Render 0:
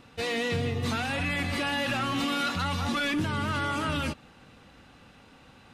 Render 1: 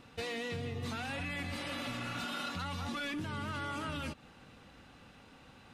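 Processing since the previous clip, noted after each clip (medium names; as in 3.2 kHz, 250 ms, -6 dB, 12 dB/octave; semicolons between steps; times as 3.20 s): spectral replace 1.57–2.44 s, 260–3100 Hz both; compression 5:1, threshold -33 dBFS, peak gain reduction 8 dB; trim -3 dB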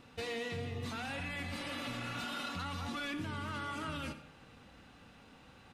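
delay 92 ms -15 dB; on a send at -10.5 dB: reverberation RT60 0.85 s, pre-delay 32 ms; on the sum: trim -1.5 dB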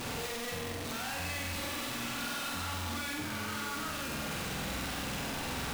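one-bit comparator; flutter echo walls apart 8 m, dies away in 0.85 s; trim +2 dB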